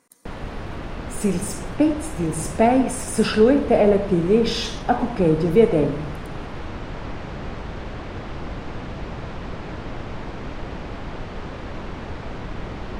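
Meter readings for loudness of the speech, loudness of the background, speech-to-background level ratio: −20.0 LKFS, −33.5 LKFS, 13.5 dB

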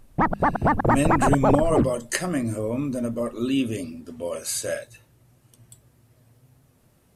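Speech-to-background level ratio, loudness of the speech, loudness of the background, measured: −3.5 dB, −26.0 LKFS, −22.5 LKFS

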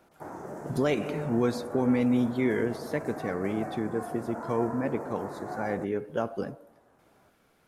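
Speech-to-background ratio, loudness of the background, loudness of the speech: 10.5 dB, −40.5 LKFS, −30.0 LKFS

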